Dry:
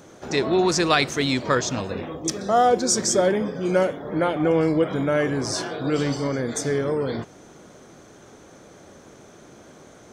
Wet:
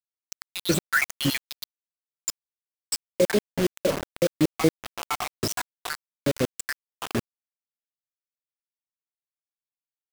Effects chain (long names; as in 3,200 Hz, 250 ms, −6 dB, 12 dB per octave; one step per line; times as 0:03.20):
time-frequency cells dropped at random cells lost 83%
0:01.64–0:03.18: inverse Chebyshev high-pass filter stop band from 1,300 Hz, stop band 70 dB
in parallel at −3 dB: downward compressor 6 to 1, threshold −37 dBFS, peak gain reduction 17.5 dB
on the sum: bit reduction 5 bits
level +2.5 dB